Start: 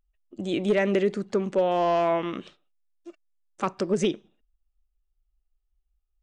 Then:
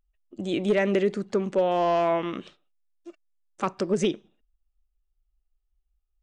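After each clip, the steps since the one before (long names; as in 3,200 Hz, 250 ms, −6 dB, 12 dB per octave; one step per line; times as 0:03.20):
no processing that can be heard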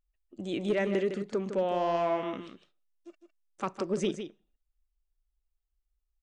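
single-tap delay 157 ms −9 dB
level −6 dB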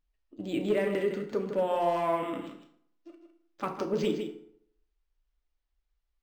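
feedback delay network reverb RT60 0.69 s, low-frequency decay 0.9×, high-frequency decay 0.65×, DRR 3 dB
linearly interpolated sample-rate reduction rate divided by 4×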